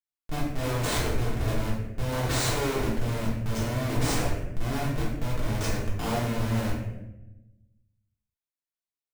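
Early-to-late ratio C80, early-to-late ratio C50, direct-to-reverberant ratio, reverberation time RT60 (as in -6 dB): 5.0 dB, 1.0 dB, -7.0 dB, 0.95 s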